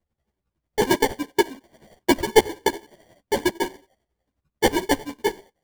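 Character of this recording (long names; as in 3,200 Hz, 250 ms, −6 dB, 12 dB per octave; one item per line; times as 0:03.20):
aliases and images of a low sample rate 1,300 Hz, jitter 0%
chopped level 11 Hz, depth 60%, duty 35%
a shimmering, thickened sound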